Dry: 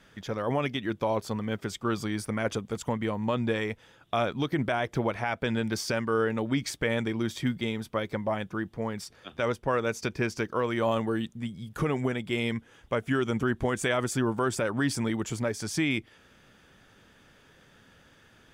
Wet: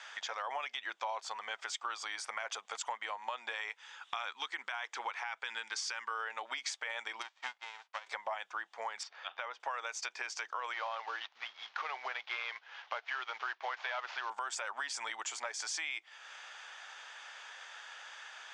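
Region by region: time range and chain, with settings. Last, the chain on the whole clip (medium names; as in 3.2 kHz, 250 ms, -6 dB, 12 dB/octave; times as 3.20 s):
3.69–6.11 s: peaking EQ 640 Hz -13 dB 0.44 oct + careless resampling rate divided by 2×, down none, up filtered
7.21–8.06 s: formants flattened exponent 0.3 + tape spacing loss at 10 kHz 27 dB + upward expansion 2.5:1, over -40 dBFS
9.03–9.60 s: distance through air 200 m + compression, threshold -31 dBFS
10.73–14.30 s: CVSD coder 32 kbps + three-band isolator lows -23 dB, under 330 Hz, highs -18 dB, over 4.2 kHz
whole clip: elliptic band-pass 790–7300 Hz, stop band 70 dB; peak limiter -25 dBFS; compression 3:1, threshold -52 dBFS; trim +11.5 dB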